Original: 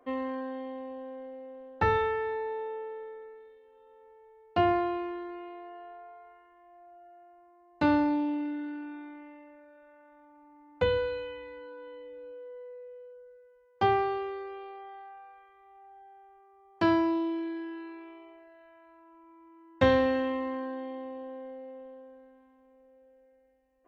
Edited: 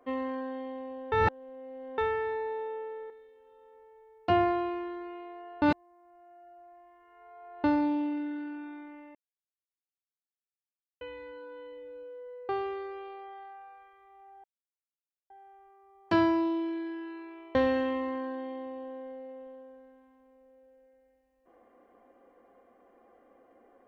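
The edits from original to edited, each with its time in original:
1.12–1.98 reverse
3.1–3.38 cut
5.9–7.92 reverse
9.43–11.29 mute
12.77–14.05 cut
16 insert silence 0.86 s
18.25–19.94 cut

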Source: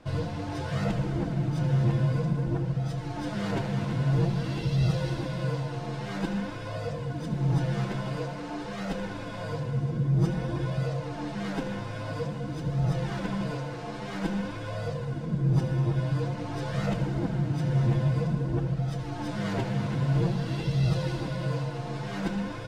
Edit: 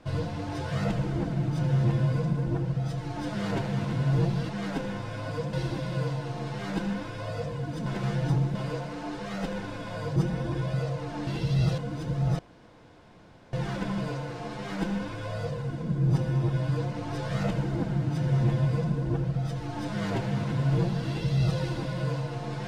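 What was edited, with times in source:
4.49–5 swap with 11.31–12.35
7.33–8.02 reverse
9.63–10.2 cut
12.96 insert room tone 1.14 s

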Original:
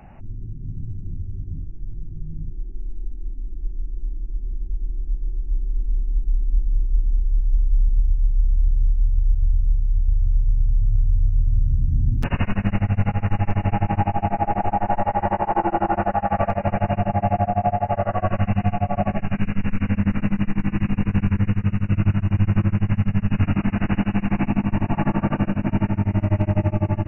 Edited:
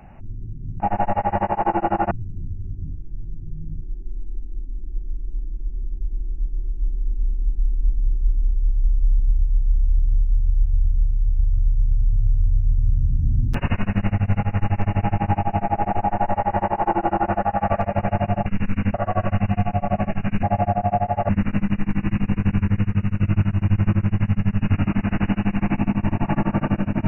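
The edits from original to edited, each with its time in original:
14.7–16.01 copy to 0.8
17.15–18.01 swap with 19.5–19.98

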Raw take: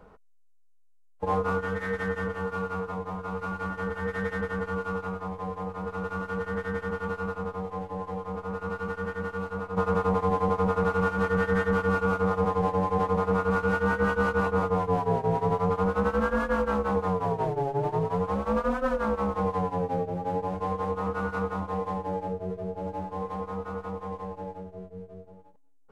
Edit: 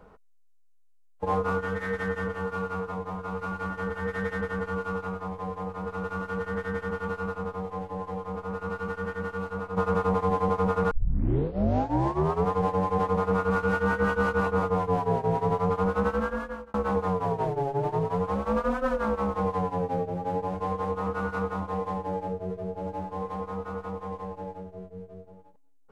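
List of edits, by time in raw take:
10.91 tape start 1.60 s
16.06–16.74 fade out

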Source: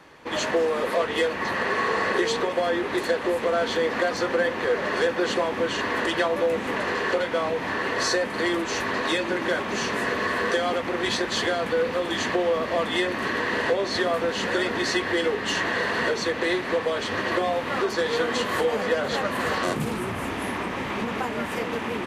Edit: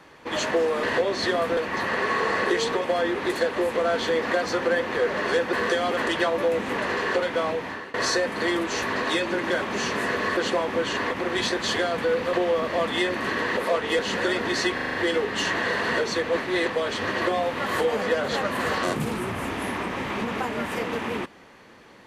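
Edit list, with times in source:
0.83–1.25 swap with 13.55–14.29
5.21–5.95 swap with 10.35–10.79
7.46–7.92 fade out, to -20 dB
12.01–12.31 cut
15.04 stutter 0.04 s, 6 plays
16.39–16.8 reverse
17.76–18.46 cut

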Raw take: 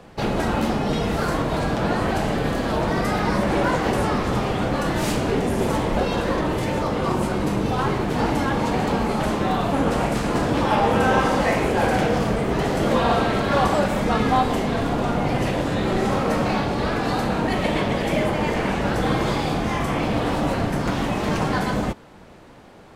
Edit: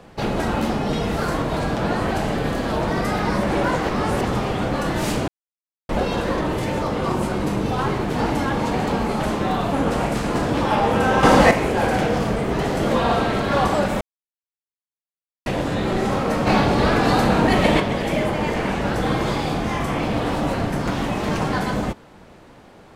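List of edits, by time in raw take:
3.89–4.25 reverse
5.28–5.89 mute
11.23–11.51 gain +7.5 dB
14.01–15.46 mute
16.47–17.8 gain +5.5 dB

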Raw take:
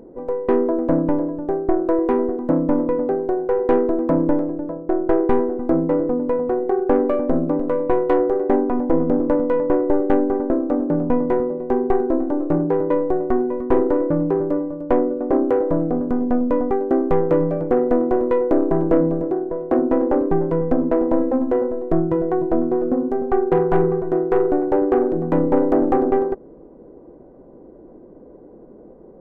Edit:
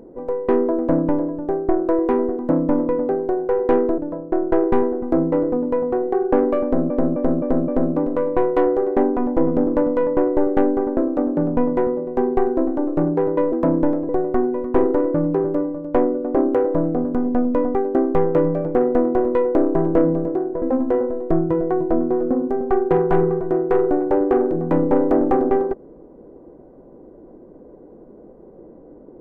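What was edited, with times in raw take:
3.98–4.55 move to 13.05
7.21–7.47 loop, 5 plays
19.58–21.23 cut

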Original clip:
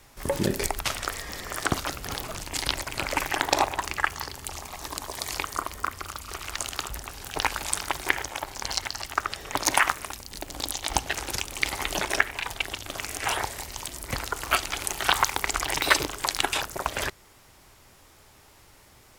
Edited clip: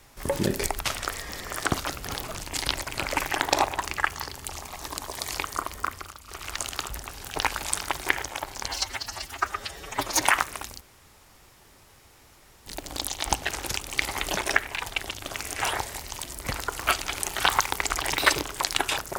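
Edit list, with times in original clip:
5.92–6.47 dip -8.5 dB, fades 0.24 s
8.68–9.7 stretch 1.5×
10.3 insert room tone 1.85 s

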